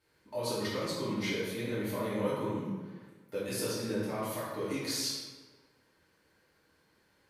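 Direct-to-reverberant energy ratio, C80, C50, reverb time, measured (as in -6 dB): -10.5 dB, 2.0 dB, -1.0 dB, 1.4 s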